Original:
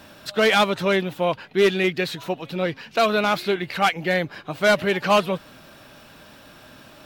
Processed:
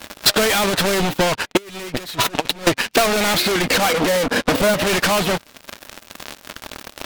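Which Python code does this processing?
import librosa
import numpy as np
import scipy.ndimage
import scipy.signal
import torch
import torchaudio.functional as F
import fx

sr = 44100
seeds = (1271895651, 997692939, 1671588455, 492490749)

p1 = fx.small_body(x, sr, hz=(250.0, 480.0), ring_ms=60, db=17, at=(3.65, 4.74))
p2 = fx.leveller(p1, sr, passes=5)
p3 = fx.fold_sine(p2, sr, drive_db=12, ceiling_db=-2.5)
p4 = p2 + (p3 * 10.0 ** (-8.0 / 20.0))
p5 = fx.over_compress(p4, sr, threshold_db=-17.0, ratio=-0.5, at=(1.57, 2.67))
p6 = fx.peak_eq(p5, sr, hz=140.0, db=-9.0, octaves=0.47)
p7 = fx.transient(p6, sr, attack_db=8, sustain_db=-8)
y = p7 * 10.0 ** (-8.0 / 20.0)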